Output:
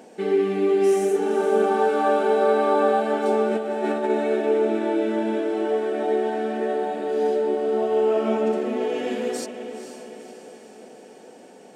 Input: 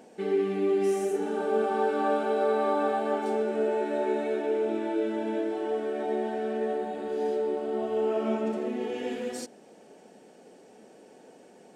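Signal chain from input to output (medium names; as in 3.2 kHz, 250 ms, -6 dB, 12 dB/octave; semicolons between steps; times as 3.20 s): bass shelf 78 Hz -11.5 dB; 3.49–4.10 s: compressor with a negative ratio -30 dBFS, ratio -0.5; echo that smears into a reverb 492 ms, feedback 53%, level -10 dB; trim +6 dB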